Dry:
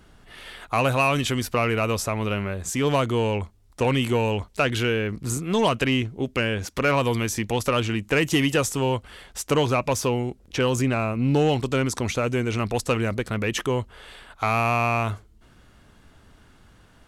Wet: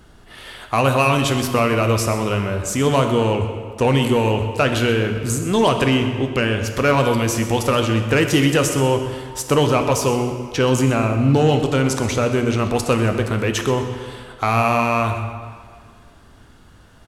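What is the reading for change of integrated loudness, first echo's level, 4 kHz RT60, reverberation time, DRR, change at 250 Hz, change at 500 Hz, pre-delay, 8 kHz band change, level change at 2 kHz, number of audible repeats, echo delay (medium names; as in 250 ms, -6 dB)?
+5.0 dB, -15.0 dB, 1.4 s, 1.9 s, 5.0 dB, +6.0 dB, +5.5 dB, 7 ms, +5.0 dB, +3.5 dB, 1, 126 ms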